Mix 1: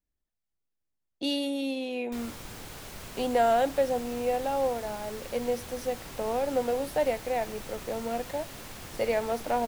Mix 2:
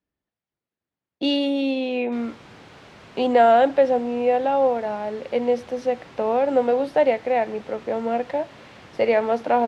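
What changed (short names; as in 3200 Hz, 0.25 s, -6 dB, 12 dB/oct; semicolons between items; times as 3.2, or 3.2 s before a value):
speech +8.5 dB; master: add BPF 110–3400 Hz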